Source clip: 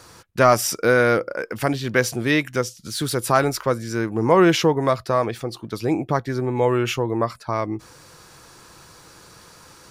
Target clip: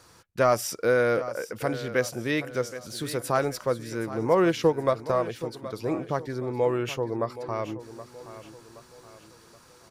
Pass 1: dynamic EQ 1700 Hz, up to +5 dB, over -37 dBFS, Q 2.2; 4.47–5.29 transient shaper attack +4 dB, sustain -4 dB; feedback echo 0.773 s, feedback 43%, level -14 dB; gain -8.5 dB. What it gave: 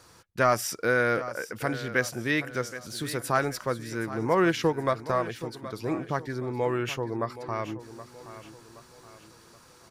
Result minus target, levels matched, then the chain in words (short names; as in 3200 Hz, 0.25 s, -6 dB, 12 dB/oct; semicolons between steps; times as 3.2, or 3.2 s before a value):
2000 Hz band +5.0 dB
dynamic EQ 520 Hz, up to +5 dB, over -37 dBFS, Q 2.2; 4.47–5.29 transient shaper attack +4 dB, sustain -4 dB; feedback echo 0.773 s, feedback 43%, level -14 dB; gain -8.5 dB